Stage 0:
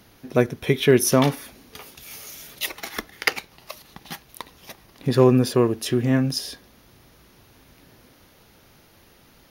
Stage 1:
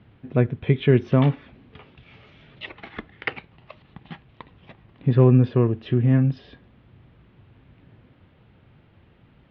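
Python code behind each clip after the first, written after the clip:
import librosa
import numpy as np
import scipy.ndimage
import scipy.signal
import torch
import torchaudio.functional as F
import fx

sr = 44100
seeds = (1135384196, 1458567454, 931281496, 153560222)

y = scipy.signal.sosfilt(scipy.signal.butter(6, 3300.0, 'lowpass', fs=sr, output='sos'), x)
y = fx.peak_eq(y, sr, hz=110.0, db=12.5, octaves=2.1)
y = F.gain(torch.from_numpy(y), -6.0).numpy()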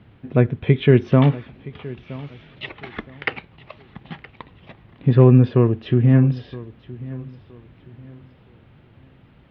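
y = fx.echo_feedback(x, sr, ms=969, feedback_pct=30, wet_db=-19.0)
y = F.gain(torch.from_numpy(y), 3.5).numpy()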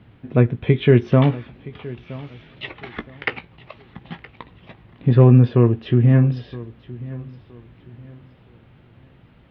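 y = fx.doubler(x, sr, ms=17.0, db=-11)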